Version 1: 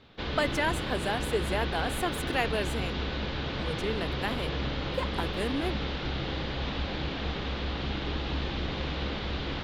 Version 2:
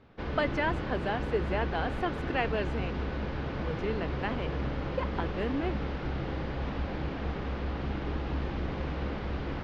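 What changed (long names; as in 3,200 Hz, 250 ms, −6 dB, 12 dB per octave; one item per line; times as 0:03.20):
background: remove low-pass with resonance 3,700 Hz, resonance Q 2.9
master: add high-frequency loss of the air 230 metres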